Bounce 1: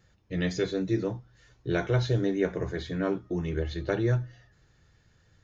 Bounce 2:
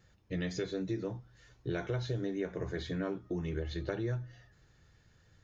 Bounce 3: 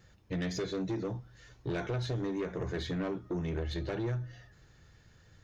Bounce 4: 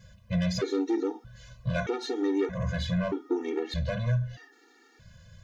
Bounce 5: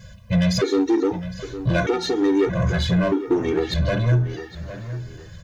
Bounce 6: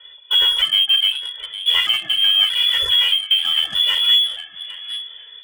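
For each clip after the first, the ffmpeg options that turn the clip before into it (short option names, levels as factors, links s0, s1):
-af "acompressor=threshold=0.0282:ratio=4,volume=0.841"
-af "asoftclip=type=tanh:threshold=0.0224,volume=1.68"
-af "afftfilt=real='re*gt(sin(2*PI*0.8*pts/sr)*(1-2*mod(floor(b*sr/1024/240),2)),0)':imag='im*gt(sin(2*PI*0.8*pts/sr)*(1-2*mod(floor(b*sr/1024/240),2)),0)':win_size=1024:overlap=0.75,volume=2.66"
-filter_complex "[0:a]asplit=2[s0][s1];[s1]asoftclip=type=hard:threshold=0.0251,volume=0.447[s2];[s0][s2]amix=inputs=2:normalize=0,asplit=2[s3][s4];[s4]adelay=810,lowpass=f=2700:p=1,volume=0.237,asplit=2[s5][s6];[s6]adelay=810,lowpass=f=2700:p=1,volume=0.27,asplit=2[s7][s8];[s8]adelay=810,lowpass=f=2700:p=1,volume=0.27[s9];[s3][s5][s7][s9]amix=inputs=4:normalize=0,volume=2.24"
-filter_complex "[0:a]lowpass=f=3000:t=q:w=0.5098,lowpass=f=3000:t=q:w=0.6013,lowpass=f=3000:t=q:w=0.9,lowpass=f=3000:t=q:w=2.563,afreqshift=-3500,asplit=2[s0][s1];[s1]acrusher=bits=3:mix=0:aa=0.5,volume=0.398[s2];[s0][s2]amix=inputs=2:normalize=0"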